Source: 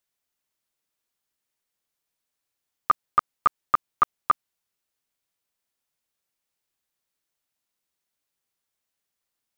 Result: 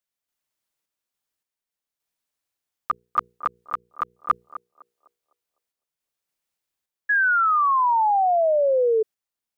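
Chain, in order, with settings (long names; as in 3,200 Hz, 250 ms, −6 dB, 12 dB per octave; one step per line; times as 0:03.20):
mains-hum notches 60/120/180/240/300/360/420/480 Hz
feedback echo with a band-pass in the loop 253 ms, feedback 43%, band-pass 520 Hz, level −11 dB
0:03.33–0:04.17: downward compressor, threshold −20 dBFS, peak gain reduction 7 dB
sample-and-hold tremolo
0:07.09–0:09.03: sound drawn into the spectrogram fall 430–1,700 Hz −19 dBFS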